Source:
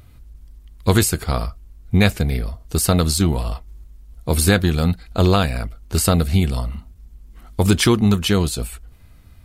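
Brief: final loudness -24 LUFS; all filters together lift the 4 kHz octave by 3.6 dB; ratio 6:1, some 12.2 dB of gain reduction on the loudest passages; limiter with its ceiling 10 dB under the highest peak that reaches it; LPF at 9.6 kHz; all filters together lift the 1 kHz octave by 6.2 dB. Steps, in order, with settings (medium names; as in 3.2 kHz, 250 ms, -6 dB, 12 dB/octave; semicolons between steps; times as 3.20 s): low-pass 9.6 kHz; peaking EQ 1 kHz +8 dB; peaking EQ 4 kHz +4 dB; compression 6:1, threshold -22 dBFS; trim +7.5 dB; peak limiter -12.5 dBFS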